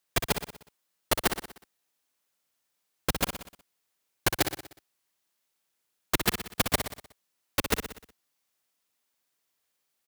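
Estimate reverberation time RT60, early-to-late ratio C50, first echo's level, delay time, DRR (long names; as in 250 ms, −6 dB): no reverb audible, no reverb audible, −8.0 dB, 61 ms, no reverb audible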